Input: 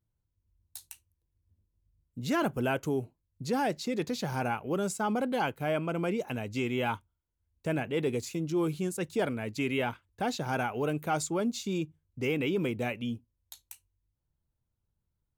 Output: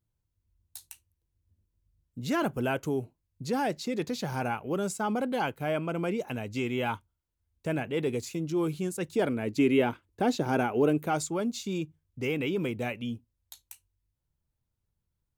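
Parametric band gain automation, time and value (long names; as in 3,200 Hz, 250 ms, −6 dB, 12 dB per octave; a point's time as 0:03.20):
parametric band 330 Hz 1.4 octaves
0:08.99 +0.5 dB
0:09.58 +10 dB
0:10.84 +10 dB
0:11.31 −0.5 dB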